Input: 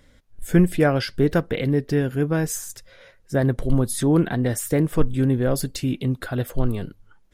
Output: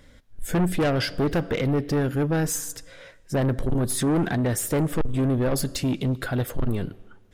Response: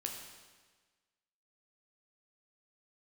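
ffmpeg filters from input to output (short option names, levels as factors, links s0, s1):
-filter_complex "[0:a]asplit=2[s0][s1];[1:a]atrim=start_sample=2205,lowpass=8200[s2];[s1][s2]afir=irnorm=-1:irlink=0,volume=0.168[s3];[s0][s3]amix=inputs=2:normalize=0,asoftclip=type=tanh:threshold=0.0944,volume=1.26"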